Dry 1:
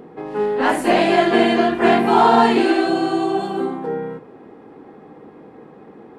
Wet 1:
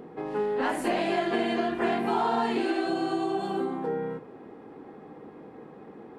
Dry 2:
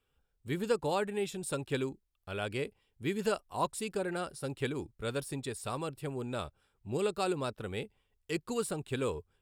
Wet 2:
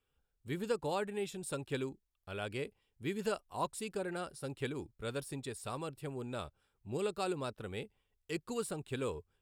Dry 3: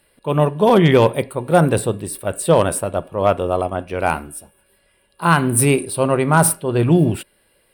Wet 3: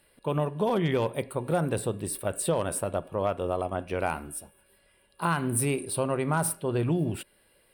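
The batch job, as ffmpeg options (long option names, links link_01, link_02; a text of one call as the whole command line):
ffmpeg -i in.wav -af "acompressor=threshold=-22dB:ratio=3,volume=-4dB" out.wav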